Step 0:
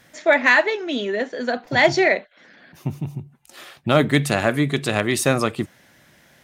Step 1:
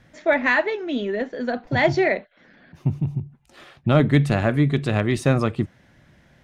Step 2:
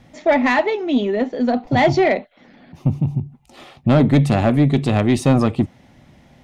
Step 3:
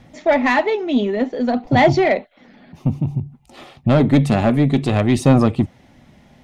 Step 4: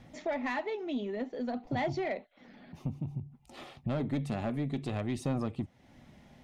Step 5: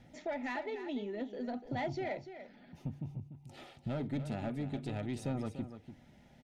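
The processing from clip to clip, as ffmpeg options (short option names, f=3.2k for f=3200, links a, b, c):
-af "aemphasis=mode=reproduction:type=bsi,volume=-3.5dB"
-af "equalizer=f=250:t=o:w=0.33:g=6,equalizer=f=800:t=o:w=0.33:g=6,equalizer=f=1.6k:t=o:w=0.33:g=-11,asoftclip=type=tanh:threshold=-12dB,volume=5dB"
-af "aphaser=in_gain=1:out_gain=1:delay=4.9:decay=0.23:speed=0.56:type=sinusoidal"
-af "acompressor=threshold=-32dB:ratio=2,volume=-7.5dB"
-af "asuperstop=centerf=1100:order=12:qfactor=6.6,aecho=1:1:293:0.282,volume=-4.5dB"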